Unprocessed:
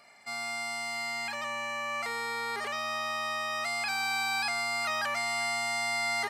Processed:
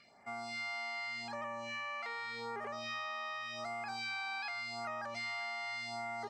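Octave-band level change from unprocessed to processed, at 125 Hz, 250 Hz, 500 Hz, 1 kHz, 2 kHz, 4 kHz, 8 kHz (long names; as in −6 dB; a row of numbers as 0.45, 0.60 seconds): −3.5, −4.0, −6.5, −8.5, −9.0, −10.0, −18.0 decibels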